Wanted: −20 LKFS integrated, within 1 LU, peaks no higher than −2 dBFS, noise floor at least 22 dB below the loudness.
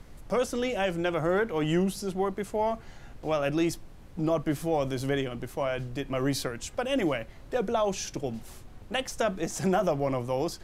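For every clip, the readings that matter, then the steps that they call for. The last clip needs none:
background noise floor −48 dBFS; target noise floor −52 dBFS; integrated loudness −29.5 LKFS; sample peak −14.5 dBFS; target loudness −20.0 LKFS
→ noise reduction from a noise print 6 dB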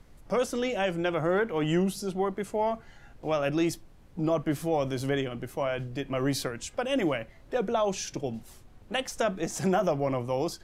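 background noise floor −53 dBFS; integrated loudness −29.5 LKFS; sample peak −14.5 dBFS; target loudness −20.0 LKFS
→ level +9.5 dB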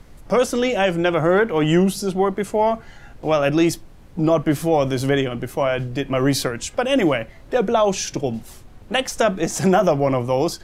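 integrated loudness −20.0 LKFS; sample peak −5.0 dBFS; background noise floor −44 dBFS

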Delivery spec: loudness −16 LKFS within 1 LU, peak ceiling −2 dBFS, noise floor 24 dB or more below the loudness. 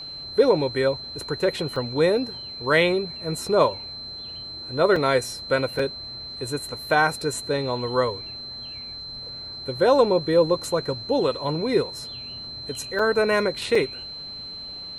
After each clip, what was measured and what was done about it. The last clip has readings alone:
number of dropouts 5; longest dropout 3.9 ms; interfering tone 4,100 Hz; level of the tone −34 dBFS; integrated loudness −24.0 LKFS; sample peak −6.0 dBFS; target loudness −16.0 LKFS
→ repair the gap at 0:01.76/0:04.96/0:05.79/0:12.99/0:13.75, 3.9 ms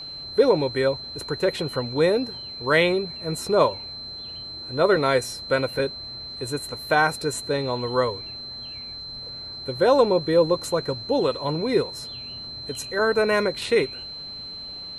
number of dropouts 0; interfering tone 4,100 Hz; level of the tone −34 dBFS
→ notch filter 4,100 Hz, Q 30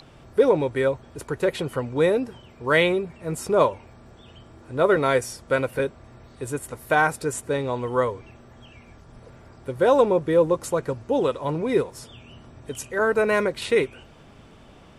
interfering tone none found; integrated loudness −23.5 LKFS; sample peak −6.0 dBFS; target loudness −16.0 LKFS
→ level +7.5 dB
brickwall limiter −2 dBFS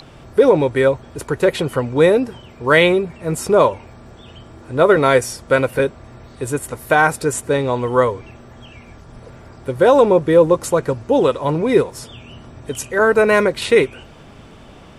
integrated loudness −16.5 LKFS; sample peak −2.0 dBFS; background noise floor −42 dBFS

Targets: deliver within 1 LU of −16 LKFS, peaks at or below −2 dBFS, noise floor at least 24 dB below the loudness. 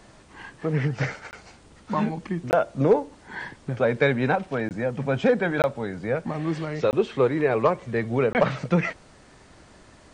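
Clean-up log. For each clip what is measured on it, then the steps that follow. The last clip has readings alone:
number of dropouts 6; longest dropout 19 ms; integrated loudness −25.0 LKFS; sample peak −9.0 dBFS; target loudness −16.0 LKFS
→ repair the gap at 0:01.31/0:02.51/0:04.69/0:05.62/0:06.91/0:08.33, 19 ms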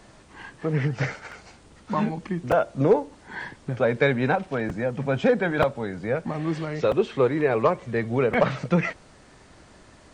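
number of dropouts 0; integrated loudness −24.5 LKFS; sample peak −6.0 dBFS; target loudness −16.0 LKFS
→ level +8.5 dB
brickwall limiter −2 dBFS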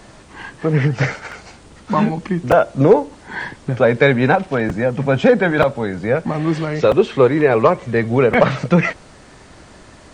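integrated loudness −16.5 LKFS; sample peak −2.0 dBFS; background noise floor −44 dBFS

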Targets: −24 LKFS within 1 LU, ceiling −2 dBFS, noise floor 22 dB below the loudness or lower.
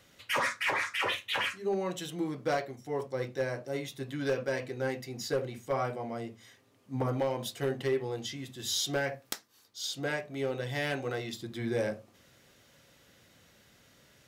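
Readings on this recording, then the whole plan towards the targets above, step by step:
share of clipped samples 0.3%; peaks flattened at −22.5 dBFS; integrated loudness −33.5 LKFS; sample peak −22.5 dBFS; target loudness −24.0 LKFS
→ clipped peaks rebuilt −22.5 dBFS
level +9.5 dB

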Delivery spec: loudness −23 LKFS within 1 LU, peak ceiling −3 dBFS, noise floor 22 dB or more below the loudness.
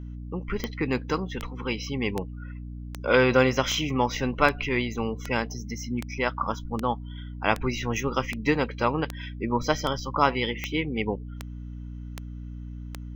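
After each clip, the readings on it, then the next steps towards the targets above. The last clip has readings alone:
number of clicks 17; mains hum 60 Hz; hum harmonics up to 300 Hz; level of the hum −35 dBFS; integrated loudness −27.0 LKFS; sample peak −5.0 dBFS; target loudness −23.0 LKFS
→ click removal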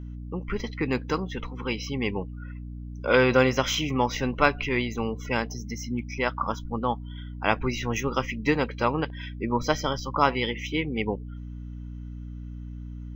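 number of clicks 0; mains hum 60 Hz; hum harmonics up to 300 Hz; level of the hum −35 dBFS
→ mains-hum notches 60/120/180/240/300 Hz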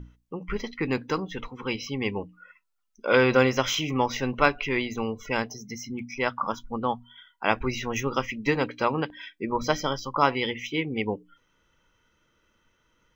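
mains hum none found; integrated loudness −27.5 LKFS; sample peak −5.0 dBFS; target loudness −23.0 LKFS
→ level +4.5 dB
brickwall limiter −3 dBFS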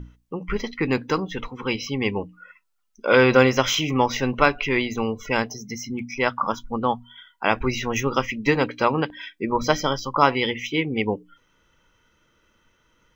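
integrated loudness −23.0 LKFS; sample peak −3.0 dBFS; background noise floor −65 dBFS

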